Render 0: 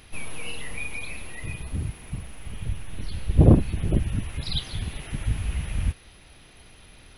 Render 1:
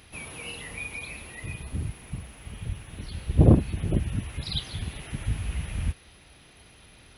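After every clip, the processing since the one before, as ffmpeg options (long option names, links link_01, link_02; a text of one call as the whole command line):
ffmpeg -i in.wav -af "highpass=45,volume=-1.5dB" out.wav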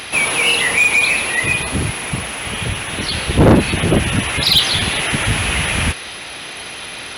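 ffmpeg -i in.wav -filter_complex "[0:a]asplit=2[link_01][link_02];[link_02]highpass=frequency=720:poles=1,volume=30dB,asoftclip=type=tanh:threshold=-4dB[link_03];[link_01][link_03]amix=inputs=2:normalize=0,lowpass=frequency=7200:poles=1,volume=-6dB,volume=3dB" out.wav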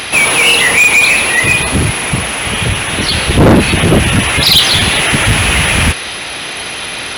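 ffmpeg -i in.wav -af "asoftclip=type=tanh:threshold=-11dB,volume=8.5dB" out.wav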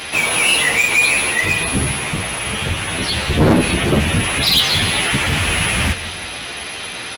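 ffmpeg -i in.wav -filter_complex "[0:a]aecho=1:1:179|358|537|716|895|1074:0.178|0.101|0.0578|0.0329|0.0188|0.0107,asplit=2[link_01][link_02];[link_02]adelay=10.9,afreqshift=1.5[link_03];[link_01][link_03]amix=inputs=2:normalize=1,volume=-3.5dB" out.wav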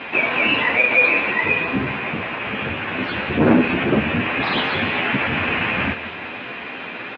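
ffmpeg -i in.wav -filter_complex "[0:a]asplit=2[link_01][link_02];[link_02]acrusher=samples=15:mix=1:aa=0.000001,volume=-5dB[link_03];[link_01][link_03]amix=inputs=2:normalize=0,highpass=150,equalizer=frequency=160:width_type=q:width=4:gain=-4,equalizer=frequency=250:width_type=q:width=4:gain=5,equalizer=frequency=1600:width_type=q:width=4:gain=5,equalizer=frequency=2500:width_type=q:width=4:gain=7,lowpass=frequency=2700:width=0.5412,lowpass=frequency=2700:width=1.3066,volume=-5.5dB" out.wav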